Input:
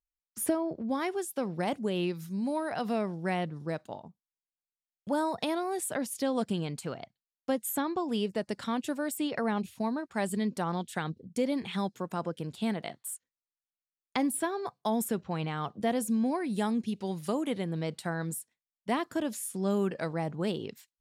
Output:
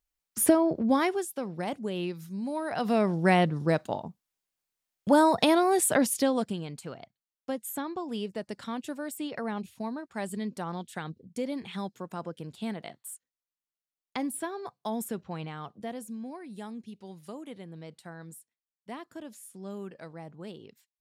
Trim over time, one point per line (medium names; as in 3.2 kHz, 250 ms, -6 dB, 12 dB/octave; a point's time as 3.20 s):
0.96 s +7.5 dB
1.40 s -2 dB
2.50 s -2 dB
3.18 s +9 dB
6.09 s +9 dB
6.59 s -3.5 dB
15.33 s -3.5 dB
16.17 s -11 dB